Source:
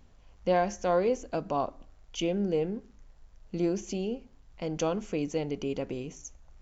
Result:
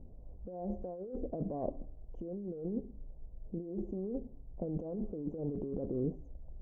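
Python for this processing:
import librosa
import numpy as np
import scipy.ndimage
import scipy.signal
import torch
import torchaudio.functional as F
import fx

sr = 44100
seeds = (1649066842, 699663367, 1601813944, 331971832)

y = scipy.signal.sosfilt(scipy.signal.cheby2(4, 50, 1600.0, 'lowpass', fs=sr, output='sos'), x)
y = fx.over_compress(y, sr, threshold_db=-38.0, ratio=-1.0)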